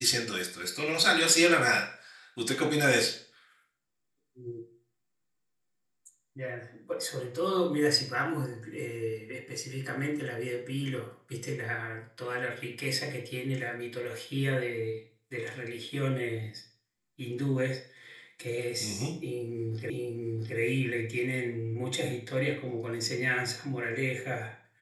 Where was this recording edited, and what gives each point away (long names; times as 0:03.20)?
0:19.90: the same again, the last 0.67 s